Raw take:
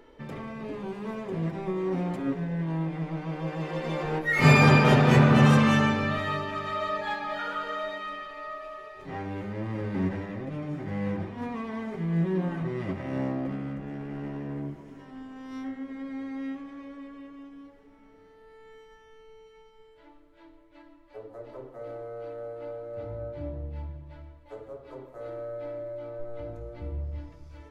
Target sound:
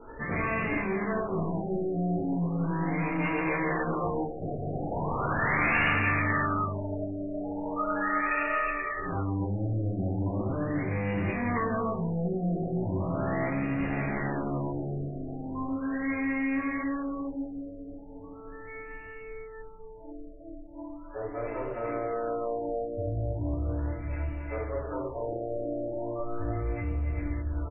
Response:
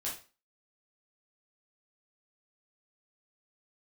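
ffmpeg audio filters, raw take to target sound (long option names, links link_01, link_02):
-filter_complex "[0:a]lowshelf=frequency=130:gain=6.5,asplit=2[link_01][link_02];[link_02]aeval=exprs='0.708*sin(PI/2*8.91*val(0)/0.708)':channel_layout=same,volume=-11dB[link_03];[link_01][link_03]amix=inputs=2:normalize=0,aecho=1:1:279|604|880:0.376|0.168|0.178,aeval=exprs='0.891*(cos(1*acos(clip(val(0)/0.891,-1,1)))-cos(1*PI/2))+0.0316*(cos(8*acos(clip(val(0)/0.891,-1,1)))-cos(8*PI/2))':channel_layout=same[link_04];[1:a]atrim=start_sample=2205,asetrate=48510,aresample=44100[link_05];[link_04][link_05]afir=irnorm=-1:irlink=0,areverse,acompressor=threshold=-20dB:ratio=6,areverse,adynamicequalizer=threshold=0.00631:dfrequency=2100:dqfactor=4:tfrequency=2100:tqfactor=4:attack=5:release=100:ratio=0.375:range=2.5:mode=boostabove:tftype=bell,crystalizer=i=8:c=0,afftfilt=real='re*lt(b*sr/1024,750*pow(2900/750,0.5+0.5*sin(2*PI*0.38*pts/sr)))':imag='im*lt(b*sr/1024,750*pow(2900/750,0.5+0.5*sin(2*PI*0.38*pts/sr)))':win_size=1024:overlap=0.75,volume=-7dB"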